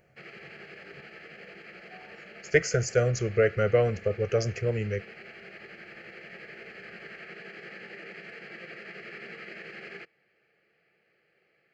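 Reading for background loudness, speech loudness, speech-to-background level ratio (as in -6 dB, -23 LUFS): -44.5 LUFS, -27.0 LUFS, 17.5 dB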